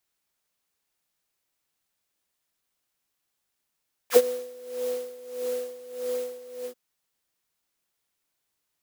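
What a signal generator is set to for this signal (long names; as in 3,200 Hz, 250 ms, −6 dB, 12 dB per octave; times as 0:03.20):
subtractive patch with tremolo B3, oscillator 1 triangle, oscillator 2 sine, interval +12 semitones, oscillator 2 level 0 dB, sub −16 dB, noise −1 dB, filter highpass, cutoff 330 Hz, Q 4.4, filter envelope 3 octaves, filter decay 0.06 s, filter sustain 15%, attack 52 ms, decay 0.06 s, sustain −21 dB, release 0.09 s, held 2.55 s, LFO 1.6 Hz, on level 16 dB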